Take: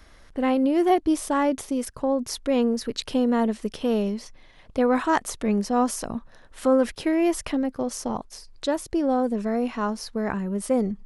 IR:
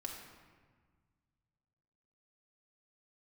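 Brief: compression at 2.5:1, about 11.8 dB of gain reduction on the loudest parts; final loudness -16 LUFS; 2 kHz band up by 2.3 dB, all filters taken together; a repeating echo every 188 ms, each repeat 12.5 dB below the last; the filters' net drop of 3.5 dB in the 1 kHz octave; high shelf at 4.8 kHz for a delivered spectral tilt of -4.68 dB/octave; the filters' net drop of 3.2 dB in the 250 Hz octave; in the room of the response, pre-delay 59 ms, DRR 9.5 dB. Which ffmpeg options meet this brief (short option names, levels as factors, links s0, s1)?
-filter_complex "[0:a]equalizer=f=250:t=o:g=-3.5,equalizer=f=1000:t=o:g=-5.5,equalizer=f=2000:t=o:g=6,highshelf=f=4800:g=-8.5,acompressor=threshold=0.0141:ratio=2.5,aecho=1:1:188|376|564:0.237|0.0569|0.0137,asplit=2[s0][s1];[1:a]atrim=start_sample=2205,adelay=59[s2];[s1][s2]afir=irnorm=-1:irlink=0,volume=0.398[s3];[s0][s3]amix=inputs=2:normalize=0,volume=10.6"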